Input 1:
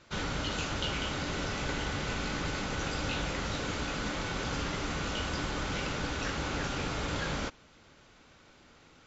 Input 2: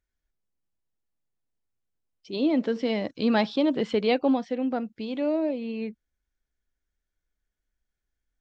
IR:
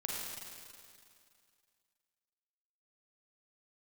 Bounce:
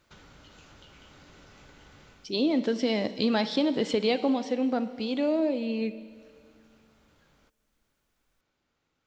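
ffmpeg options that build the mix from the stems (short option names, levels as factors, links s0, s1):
-filter_complex "[0:a]acompressor=threshold=0.00794:ratio=6,volume=0.355,afade=t=out:st=2:d=0.39:silence=0.281838[s0];[1:a]bass=f=250:g=0,treble=f=4000:g=10,bandreject=f=189.8:t=h:w=4,bandreject=f=379.6:t=h:w=4,bandreject=f=569.4:t=h:w=4,bandreject=f=759.2:t=h:w=4,bandreject=f=949:t=h:w=4,bandreject=f=1138.8:t=h:w=4,bandreject=f=1328.6:t=h:w=4,bandreject=f=1518.4:t=h:w=4,bandreject=f=1708.2:t=h:w=4,bandreject=f=1898:t=h:w=4,bandreject=f=2087.8:t=h:w=4,bandreject=f=2277.6:t=h:w=4,bandreject=f=2467.4:t=h:w=4,bandreject=f=2657.2:t=h:w=4,bandreject=f=2847:t=h:w=4,bandreject=f=3036.8:t=h:w=4,bandreject=f=3226.6:t=h:w=4,bandreject=f=3416.4:t=h:w=4,bandreject=f=3606.2:t=h:w=4,bandreject=f=3796:t=h:w=4,bandreject=f=3985.8:t=h:w=4,bandreject=f=4175.6:t=h:w=4,bandreject=f=4365.4:t=h:w=4,bandreject=f=4555.2:t=h:w=4,bandreject=f=4745:t=h:w=4,bandreject=f=4934.8:t=h:w=4,bandreject=f=5124.6:t=h:w=4,bandreject=f=5314.4:t=h:w=4,bandreject=f=5504.2:t=h:w=4,bandreject=f=5694:t=h:w=4,bandreject=f=5883.8:t=h:w=4,bandreject=f=6073.6:t=h:w=4,bandreject=f=6263.4:t=h:w=4,acompressor=threshold=0.0708:ratio=6,volume=1.06,asplit=3[s1][s2][s3];[s2]volume=0.211[s4];[s3]apad=whole_len=399656[s5];[s0][s5]sidechaincompress=threshold=0.00562:ratio=8:attack=5.2:release=288[s6];[2:a]atrim=start_sample=2205[s7];[s4][s7]afir=irnorm=-1:irlink=0[s8];[s6][s1][s8]amix=inputs=3:normalize=0"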